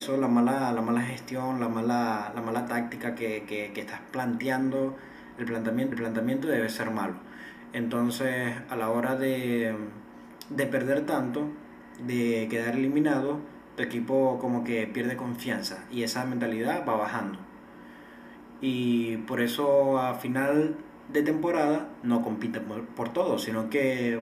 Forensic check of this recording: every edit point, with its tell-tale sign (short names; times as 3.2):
5.92 repeat of the last 0.5 s